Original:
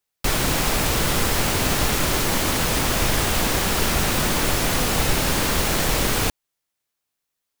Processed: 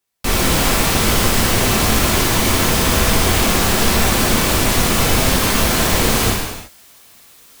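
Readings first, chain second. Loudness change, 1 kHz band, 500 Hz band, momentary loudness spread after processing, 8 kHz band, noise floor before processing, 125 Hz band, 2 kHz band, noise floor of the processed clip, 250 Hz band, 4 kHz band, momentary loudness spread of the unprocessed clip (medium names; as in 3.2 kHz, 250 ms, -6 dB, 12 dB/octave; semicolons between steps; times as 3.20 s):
+5.5 dB, +5.5 dB, +5.5 dB, 2 LU, +5.5 dB, -81 dBFS, +6.0 dB, +5.0 dB, -46 dBFS, +7.0 dB, +5.5 dB, 0 LU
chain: reverse; upward compressor, threshold -27 dBFS; reverse; gated-style reverb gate 400 ms falling, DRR -4 dB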